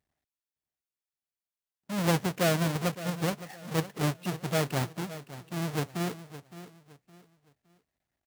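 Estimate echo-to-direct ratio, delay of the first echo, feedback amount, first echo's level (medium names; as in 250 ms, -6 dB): -14.0 dB, 564 ms, 31%, -14.5 dB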